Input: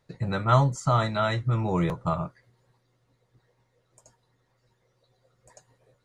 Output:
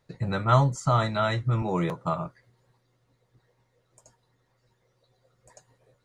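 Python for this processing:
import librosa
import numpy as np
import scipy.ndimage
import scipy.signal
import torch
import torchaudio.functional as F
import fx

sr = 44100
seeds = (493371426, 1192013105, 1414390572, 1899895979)

y = fx.highpass(x, sr, hz=160.0, slope=12, at=(1.62, 2.26))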